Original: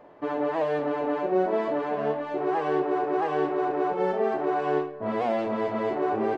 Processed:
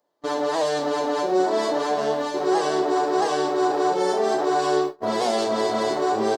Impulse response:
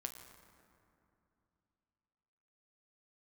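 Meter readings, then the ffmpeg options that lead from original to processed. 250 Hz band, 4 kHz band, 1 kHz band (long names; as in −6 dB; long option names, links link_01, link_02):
+3.0 dB, can't be measured, +5.0 dB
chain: -filter_complex "[0:a]aexciter=amount=9.2:drive=7.4:freq=3800,lowshelf=frequency=160:gain=-11.5,asplit=2[link_01][link_02];[link_02]alimiter=limit=-23.5dB:level=0:latency=1,volume=0dB[link_03];[link_01][link_03]amix=inputs=2:normalize=0,asplit=2[link_04][link_05];[link_05]adelay=1166,volume=-8dB,highshelf=frequency=4000:gain=-26.2[link_06];[link_04][link_06]amix=inputs=2:normalize=0,agate=range=-29dB:threshold=-26dB:ratio=16:detection=peak,asplit=2[link_07][link_08];[link_08]aecho=0:1:35|46:0.178|0.158[link_09];[link_07][link_09]amix=inputs=2:normalize=0"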